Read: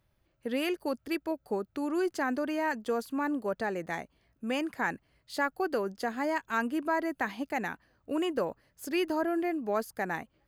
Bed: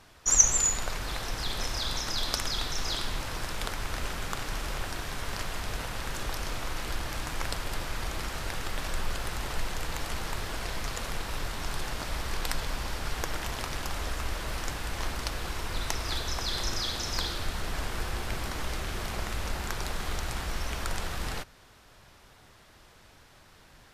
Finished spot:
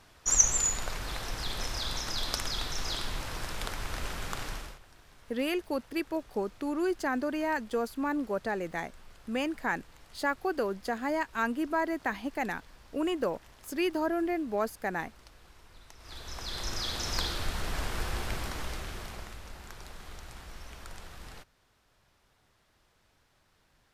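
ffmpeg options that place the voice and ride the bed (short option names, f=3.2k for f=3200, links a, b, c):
-filter_complex "[0:a]adelay=4850,volume=0dB[a];[1:a]volume=19dB,afade=t=out:st=4.46:d=0.33:silence=0.105925,afade=t=in:st=15.97:d=1.13:silence=0.0841395,afade=t=out:st=18.21:d=1.2:silence=0.237137[b];[a][b]amix=inputs=2:normalize=0"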